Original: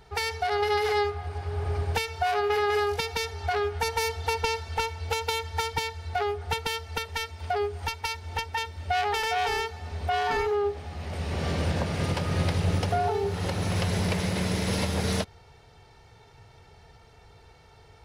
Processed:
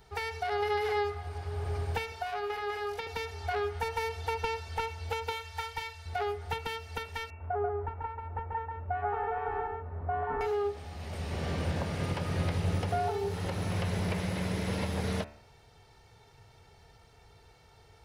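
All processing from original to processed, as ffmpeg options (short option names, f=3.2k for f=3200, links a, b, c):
-filter_complex "[0:a]asettb=1/sr,asplit=3[a][b][c];[a]atrim=end=2.124[d];[b]atrim=start=2.12:end=3.07,asetpts=PTS-STARTPTS,afade=t=in:d=0.004:c=qsin,afade=t=out:st=0.946:d=0.004:c=qsin,acrossover=split=290|4800[e][f][g];[e]acompressor=threshold=-48dB:ratio=4[h];[f]acompressor=threshold=-27dB:ratio=4[i];[g]acompressor=threshold=-56dB:ratio=4[j];[h][i][j]amix=inputs=3:normalize=0,bandreject=f=60:t=h:w=6,bandreject=f=120:t=h:w=6,bandreject=f=180:t=h:w=6,bandreject=f=240:t=h:w=6,bandreject=f=300:t=h:w=6,bandreject=f=360:t=h:w=6,bandreject=f=420:t=h:w=6,aeval=exprs='val(0)+0.00141*(sin(2*PI*50*n/s)+sin(2*PI*2*50*n/s)/2+sin(2*PI*3*50*n/s)/3+sin(2*PI*4*50*n/s)/4+sin(2*PI*5*50*n/s)/5)':c=same[k];[c]atrim=start=3.066[l];[d][k]acrossfade=d=0.004:c1=hsin:c2=qsin[m];[m][l]acrossfade=d=0.004:c1=qsin:c2=hsin,asettb=1/sr,asplit=3[n][o][p];[n]atrim=end=5.324[q];[o]atrim=start=5.32:end=6.06,asetpts=PTS-STARTPTS,afade=t=in:d=0.004:c=qsin,afade=t=out:st=0.736:d=0.004:c=qsin,equalizer=f=210:w=0.56:g=-14.5,asplit=2[r][s];[s]adelay=37,volume=-13dB[t];[r][t]amix=inputs=2:normalize=0,atrim=end_sample=32634[u];[p]atrim=start=6.056[v];[q][u]acrossfade=d=0.004:c1=hsin:c2=qsin[w];[w][v]acrossfade=d=0.004:c1=qsin:c2=hsin,asettb=1/sr,asplit=3[x][y][z];[x]atrim=end=7.304[aa];[y]atrim=start=7.3:end=10.41,asetpts=PTS-STARTPTS,afade=t=in:d=0.004:c=qsin,afade=t=out:st=3.106:d=0.004:c=qsin,lowpass=f=1.4k:w=0.5412,lowpass=f=1.4k:w=1.3066,aecho=1:1:138:0.668,atrim=end_sample=137151[ab];[z]atrim=start=10.406[ac];[aa][ab]acrossfade=d=0.004:c1=hsin:c2=qsin[ad];[ad][ac]acrossfade=d=0.004:c1=qsin:c2=hsin,bandreject=f=73.1:t=h:w=4,bandreject=f=146.2:t=h:w=4,bandreject=f=219.3:t=h:w=4,bandreject=f=292.4:t=h:w=4,bandreject=f=365.5:t=h:w=4,bandreject=f=438.6:t=h:w=4,bandreject=f=511.7:t=h:w=4,bandreject=f=584.8:t=h:w=4,bandreject=f=657.9:t=h:w=4,bandreject=f=731:t=h:w=4,bandreject=f=804.1:t=h:w=4,bandreject=f=877.2:t=h:w=4,bandreject=f=950.3:t=h:w=4,bandreject=f=1.0234k:t=h:w=4,bandreject=f=1.0965k:t=h:w=4,bandreject=f=1.1696k:t=h:w=4,bandreject=f=1.2427k:t=h:w=4,bandreject=f=1.3158k:t=h:w=4,bandreject=f=1.3889k:t=h:w=4,bandreject=f=1.462k:t=h:w=4,bandreject=f=1.5351k:t=h:w=4,bandreject=f=1.6082k:t=h:w=4,bandreject=f=1.6813k:t=h:w=4,bandreject=f=1.7544k:t=h:w=4,bandreject=f=1.8275k:t=h:w=4,bandreject=f=1.9006k:t=h:w=4,bandreject=f=1.9737k:t=h:w=4,bandreject=f=2.0468k:t=h:w=4,bandreject=f=2.1199k:t=h:w=4,bandreject=f=2.193k:t=h:w=4,bandreject=f=2.2661k:t=h:w=4,bandreject=f=2.3392k:t=h:w=4,bandreject=f=2.4123k:t=h:w=4,bandreject=f=2.4854k:t=h:w=4,bandreject=f=2.5585k:t=h:w=4,bandreject=f=2.6316k:t=h:w=4,bandreject=f=2.7047k:t=h:w=4,bandreject=f=2.7778k:t=h:w=4,acrossover=split=3100[ae][af];[af]acompressor=threshold=-46dB:ratio=4:attack=1:release=60[ag];[ae][ag]amix=inputs=2:normalize=0,highshelf=f=8k:g=7,volume=-4.5dB"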